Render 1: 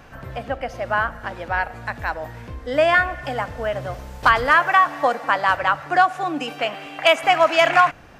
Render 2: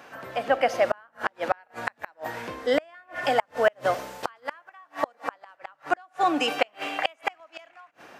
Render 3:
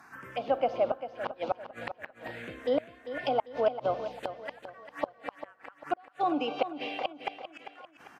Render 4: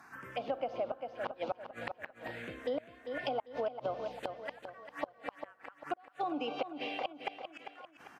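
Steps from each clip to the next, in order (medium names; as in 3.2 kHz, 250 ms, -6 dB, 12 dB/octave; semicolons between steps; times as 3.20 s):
high-pass 320 Hz 12 dB/octave; level rider gain up to 10 dB; inverted gate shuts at -9 dBFS, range -37 dB
low-pass that closes with the level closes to 2.3 kHz, closed at -21.5 dBFS; touch-sensitive phaser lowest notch 480 Hz, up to 1.8 kHz, full sweep at -26 dBFS; on a send: feedback delay 396 ms, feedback 40%, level -11 dB; on the sum: trim -3 dB
compression 5:1, threshold -30 dBFS, peak gain reduction 9.5 dB; trim -2 dB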